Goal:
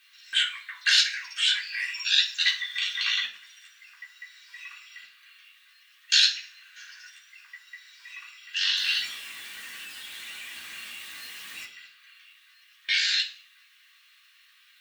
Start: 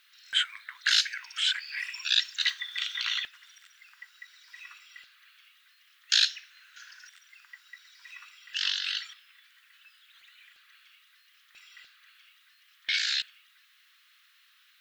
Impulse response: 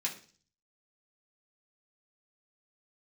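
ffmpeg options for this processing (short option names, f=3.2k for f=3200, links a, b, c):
-filter_complex "[0:a]asettb=1/sr,asplit=3[a][b][c];[a]atrim=end=8.774[d];[b]atrim=start=8.77:end=11.65,asetpts=PTS-STARTPTS,afade=t=in:d=0.004:c=qsin,afade=t=out:st=2.876:d=0.004:c=qsin,aeval=exprs='val(0)+0.5*0.00944*sgn(val(0))':c=same[e];[c]atrim=start=11.646[f];[d][e]acrossfade=d=0.004:c1=hsin:c2=qsin[g];[g][f]acrossfade=d=0.004:c1=qsin:c2=hsin[h];[1:a]atrim=start_sample=2205,afade=t=out:st=0.42:d=0.01,atrim=end_sample=18963,asetrate=48510,aresample=44100[i];[h][i]afir=irnorm=-1:irlink=0,volume=1.5dB"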